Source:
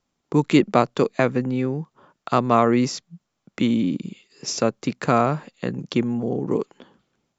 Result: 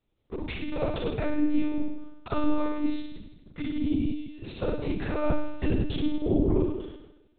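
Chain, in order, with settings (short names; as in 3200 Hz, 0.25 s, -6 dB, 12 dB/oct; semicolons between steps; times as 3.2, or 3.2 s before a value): HPF 88 Hz 12 dB/oct; bell 1200 Hz -9.5 dB 2.6 oct; negative-ratio compressor -25 dBFS, ratio -0.5; flutter echo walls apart 5.5 m, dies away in 0.97 s; monotone LPC vocoder at 8 kHz 300 Hz; gain -1.5 dB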